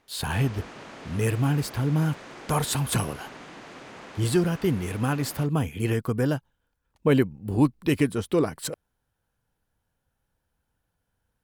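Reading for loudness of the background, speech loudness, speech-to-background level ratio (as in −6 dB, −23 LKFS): −43.5 LKFS, −26.0 LKFS, 17.5 dB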